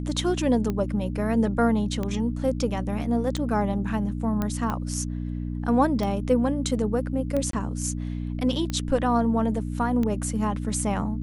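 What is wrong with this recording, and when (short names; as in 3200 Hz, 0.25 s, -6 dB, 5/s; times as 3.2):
hum 60 Hz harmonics 5 -30 dBFS
tick 45 rpm -16 dBFS
4.42 pop -14 dBFS
7.51–7.53 gap 23 ms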